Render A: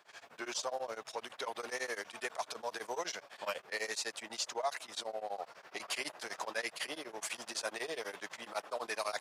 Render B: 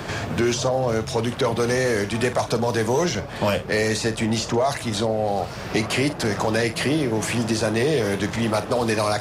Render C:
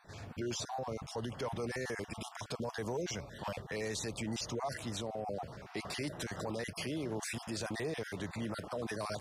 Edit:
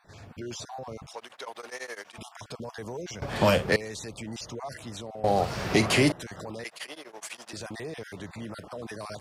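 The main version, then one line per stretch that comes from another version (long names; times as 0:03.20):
C
0:01.13–0:02.18: punch in from A
0:03.22–0:03.76: punch in from B
0:05.24–0:06.12: punch in from B
0:06.65–0:07.53: punch in from A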